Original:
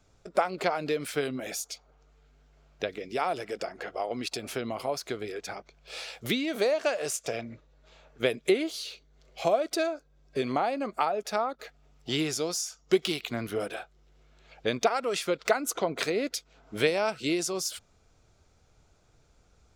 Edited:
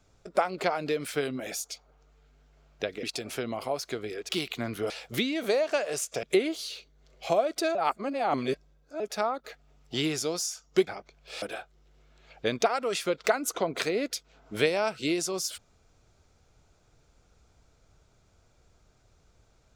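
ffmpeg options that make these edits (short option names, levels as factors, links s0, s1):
-filter_complex "[0:a]asplit=9[s0][s1][s2][s3][s4][s5][s6][s7][s8];[s0]atrim=end=3.032[s9];[s1]atrim=start=4.208:end=5.472[s10];[s2]atrim=start=13.018:end=13.632[s11];[s3]atrim=start=6.018:end=7.352[s12];[s4]atrim=start=8.378:end=9.902[s13];[s5]atrim=start=9.898:end=11.152,asetpts=PTS-STARTPTS,areverse[s14];[s6]atrim=start=11.148:end=13.022[s15];[s7]atrim=start=5.468:end=6.022[s16];[s8]atrim=start=13.628[s17];[s9][s10]acrossfade=d=0.004:c1=hsin:c2=hsin[s18];[s18][s11]acrossfade=d=0.004:c1=hsin:c2=hsin[s19];[s19][s12]acrossfade=d=0.004:c1=hsin:c2=hsin[s20];[s20][s13]acrossfade=d=0.004:c1=hsin:c2=hsin[s21];[s21][s14]acrossfade=d=0.004:c1=hsin:c2=hsin[s22];[s22][s15]acrossfade=d=0.004:c1=hsin:c2=hsin[s23];[s23][s16]acrossfade=d=0.004:c1=hsin:c2=hsin[s24];[s24][s17]acrossfade=d=0.004:c1=hsin:c2=hsin"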